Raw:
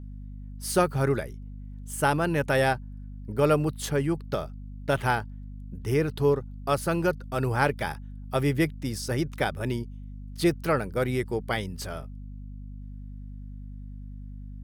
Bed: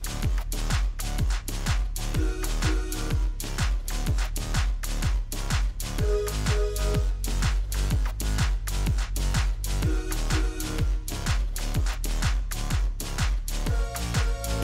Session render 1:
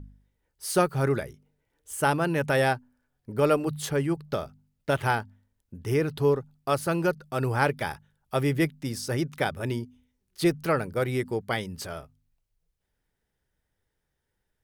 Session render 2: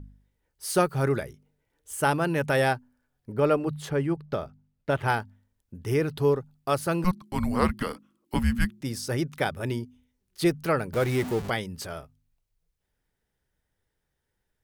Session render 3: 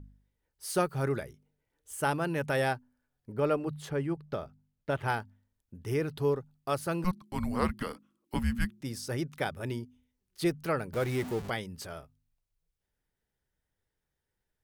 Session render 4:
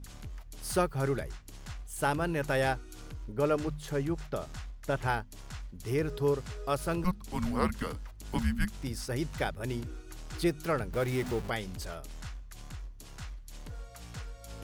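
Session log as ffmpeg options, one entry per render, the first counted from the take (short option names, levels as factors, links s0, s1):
-af "bandreject=f=50:t=h:w=4,bandreject=f=100:t=h:w=4,bandreject=f=150:t=h:w=4,bandreject=f=200:t=h:w=4,bandreject=f=250:t=h:w=4"
-filter_complex "[0:a]asettb=1/sr,asplit=3[s0][s1][s2];[s0]atrim=end=3.324[s3];[s1]atrim=start=3.32:end=5.08,asetpts=PTS-STARTPTS,afade=t=in:d=0.004:c=qsin,afade=t=out:st=1.756:d=0.004:c=qsin,highshelf=f=4000:g=-11[s4];[s2]atrim=start=5.076[s5];[s3][s4]acrossfade=d=0.004:c1=hsin:c2=qsin[s6];[s6][s5]acrossfade=d=0.004:c1=qsin:c2=hsin,asettb=1/sr,asplit=3[s7][s8][s9];[s7]atrim=end=7.044[s10];[s8]atrim=start=7.04:end=8.81,asetpts=PTS-STARTPTS,afade=t=in:d=0.004:c=qsin,afade=t=out:st=1.766:d=0.004:c=qsin,afreqshift=-360[s11];[s9]atrim=start=8.806[s12];[s10][s11]acrossfade=d=0.004:c1=hsin:c2=qsin[s13];[s13][s12]acrossfade=d=0.004:c1=qsin:c2=hsin,asettb=1/sr,asplit=3[s14][s15][s16];[s14]atrim=end=10.934[s17];[s15]atrim=start=10.93:end=11.5,asetpts=PTS-STARTPTS,afade=t=in:d=0.004:c=qsin,afade=t=out:st=0.566:d=0.004:c=qsin,aeval=exprs='val(0)+0.5*0.0299*sgn(val(0))':c=same[s18];[s16]atrim=start=11.496[s19];[s17][s18]acrossfade=d=0.004:c1=hsin:c2=qsin[s20];[s20][s19]acrossfade=d=0.004:c1=qsin:c2=hsin"
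-af "volume=0.531"
-filter_complex "[1:a]volume=0.141[s0];[0:a][s0]amix=inputs=2:normalize=0"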